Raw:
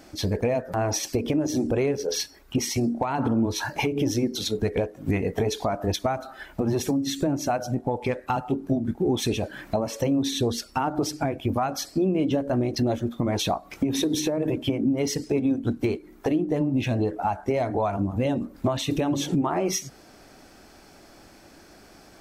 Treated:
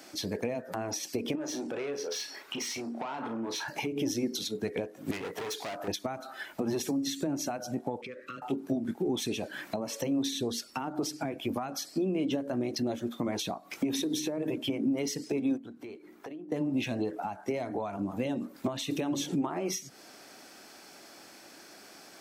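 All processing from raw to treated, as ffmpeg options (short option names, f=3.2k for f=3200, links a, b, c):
-filter_complex "[0:a]asettb=1/sr,asplit=3[a][b][c];[a]atrim=end=1.354[d];[b]atrim=start=1.35:end=3.68,asetpts=PTS-STARTPTS,afade=t=in:d=0.004:c=qsin,afade=t=out:st=2.326:d=0.004:c=qsin,asplit=2[e][f];[f]highpass=f=720:p=1,volume=17dB,asoftclip=type=tanh:threshold=-12.5dB[g];[e][g]amix=inputs=2:normalize=0,lowpass=f=2.5k:p=1,volume=-6dB,acompressor=threshold=-34dB:ratio=2.5:attack=3.2:release=140:knee=1:detection=peak,asplit=2[h][i];[i]adelay=35,volume=-9dB[j];[h][j]amix=inputs=2:normalize=0,atrim=end_sample=102753[k];[c]atrim=start=3.676[l];[d][k]acrossfade=d=0.004:c1=hsin:c2=qsin[m];[m][l]acrossfade=d=0.004:c1=qsin:c2=hsin,asettb=1/sr,asplit=3[n][o][p];[n]atrim=end=5.114[q];[o]atrim=start=5.11:end=5.88,asetpts=PTS-STARTPTS,afade=t=in:d=0.004:c=qsin,afade=t=out:st=0.766:d=0.004:c=qsin,equalizer=f=220:w=4.1:g=-8,volume=30.5dB,asoftclip=hard,volume=-30.5dB[r];[p]atrim=start=5.876[s];[q][r]acrossfade=d=0.004:c1=hsin:c2=qsin[t];[t][s]acrossfade=d=0.004:c1=qsin:c2=hsin,asettb=1/sr,asplit=3[u][v][w];[u]atrim=end=8.014[x];[v]atrim=start=8.01:end=8.42,asetpts=PTS-STARTPTS,afade=t=in:d=0.004:c=qsin,afade=t=out:st=0.406:d=0.004:c=qsin,asuperstop=centerf=810:order=12:qfactor=1.5,aemphasis=mode=reproduction:type=50fm,acompressor=threshold=-36dB:ratio=5:attack=3.2:release=140:knee=1:detection=peak[y];[w]atrim=start=8.416[z];[x][y]acrossfade=d=0.004:c1=hsin:c2=qsin[aa];[aa][z]acrossfade=d=0.004:c1=qsin:c2=hsin,asettb=1/sr,asplit=3[ab][ac][ad];[ab]atrim=end=15.574[ae];[ac]atrim=start=15.57:end=16.52,asetpts=PTS-STARTPTS,afade=t=in:d=0.004:c=qsin,afade=t=out:st=0.946:d=0.004:c=qsin,highshelf=f=3.8k:g=-9,acompressor=threshold=-41dB:ratio=3:attack=3.2:release=140:knee=1:detection=peak[af];[ad]atrim=start=16.516[ag];[ae][af]acrossfade=d=0.004:c1=hsin:c2=qsin[ah];[ah][ag]acrossfade=d=0.004:c1=qsin:c2=hsin,highpass=210,tiltshelf=f=1.3k:g=-3.5,acrossover=split=320[ai][aj];[aj]acompressor=threshold=-34dB:ratio=6[ak];[ai][ak]amix=inputs=2:normalize=0"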